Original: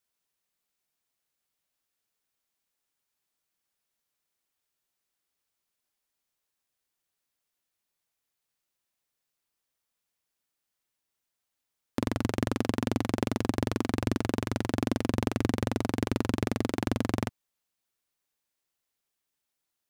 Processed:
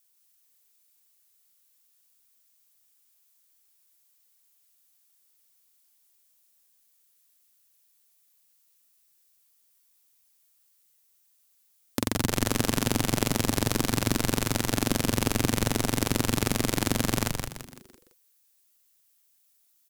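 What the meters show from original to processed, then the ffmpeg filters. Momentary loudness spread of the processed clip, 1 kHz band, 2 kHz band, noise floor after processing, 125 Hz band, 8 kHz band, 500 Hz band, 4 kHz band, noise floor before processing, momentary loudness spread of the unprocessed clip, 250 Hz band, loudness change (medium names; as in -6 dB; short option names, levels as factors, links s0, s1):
4 LU, +3.0 dB, +5.5 dB, -67 dBFS, +3.0 dB, +15.0 dB, +1.5 dB, +10.0 dB, -84 dBFS, 2 LU, +1.0 dB, +3.5 dB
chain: -filter_complex "[0:a]crystalizer=i=4:c=0,asplit=6[s0][s1][s2][s3][s4][s5];[s1]adelay=168,afreqshift=-120,volume=0.631[s6];[s2]adelay=336,afreqshift=-240,volume=0.26[s7];[s3]adelay=504,afreqshift=-360,volume=0.106[s8];[s4]adelay=672,afreqshift=-480,volume=0.0437[s9];[s5]adelay=840,afreqshift=-600,volume=0.0178[s10];[s0][s6][s7][s8][s9][s10]amix=inputs=6:normalize=0"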